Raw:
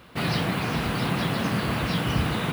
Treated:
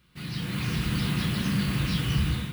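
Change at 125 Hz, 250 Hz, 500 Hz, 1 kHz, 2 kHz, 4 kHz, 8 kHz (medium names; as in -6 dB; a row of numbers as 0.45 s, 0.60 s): +0.5 dB, -1.5 dB, -11.0 dB, -11.0 dB, -5.5 dB, -2.0 dB, -0.5 dB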